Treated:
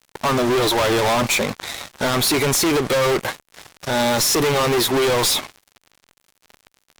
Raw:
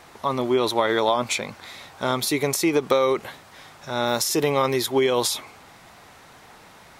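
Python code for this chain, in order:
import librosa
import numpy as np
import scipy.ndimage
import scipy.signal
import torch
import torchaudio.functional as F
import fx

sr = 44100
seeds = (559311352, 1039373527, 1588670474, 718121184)

y = fx.spec_quant(x, sr, step_db=15)
y = fx.cheby_harmonics(y, sr, harmonics=(3, 7), levels_db=(-40, -20), full_scale_db=-6.5)
y = fx.fuzz(y, sr, gain_db=45.0, gate_db=-52.0)
y = y * librosa.db_to_amplitude(-3.0)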